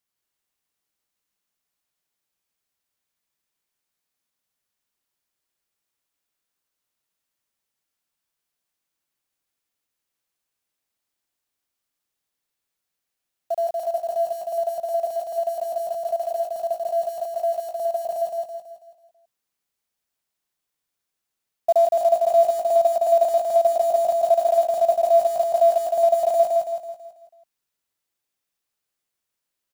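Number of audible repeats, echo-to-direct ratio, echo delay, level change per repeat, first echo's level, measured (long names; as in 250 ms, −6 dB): 5, −2.0 dB, 164 ms, −7.0 dB, −3.0 dB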